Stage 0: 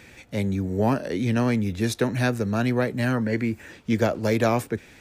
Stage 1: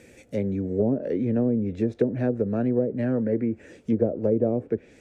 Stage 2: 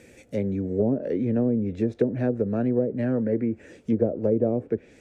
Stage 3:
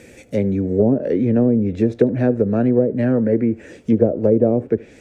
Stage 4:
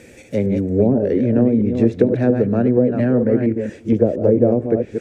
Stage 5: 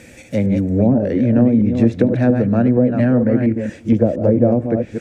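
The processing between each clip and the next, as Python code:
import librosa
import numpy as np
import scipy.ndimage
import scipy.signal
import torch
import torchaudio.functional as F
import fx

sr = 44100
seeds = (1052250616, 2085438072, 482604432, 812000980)

y1 = fx.graphic_eq(x, sr, hz=(250, 500, 1000, 4000, 8000), db=(4, 11, -9, -5, 6))
y1 = fx.env_lowpass_down(y1, sr, base_hz=510.0, full_db=-12.0)
y1 = y1 * 10.0 ** (-5.5 / 20.0)
y2 = y1
y3 = y2 + 10.0 ** (-23.0 / 20.0) * np.pad(y2, (int(76 * sr / 1000.0), 0))[:len(y2)]
y3 = y3 * 10.0 ** (7.5 / 20.0)
y4 = fx.reverse_delay(y3, sr, ms=231, wet_db=-6.0)
y5 = fx.peak_eq(y4, sr, hz=410.0, db=-11.5, octaves=0.41)
y5 = y5 * 10.0 ** (3.5 / 20.0)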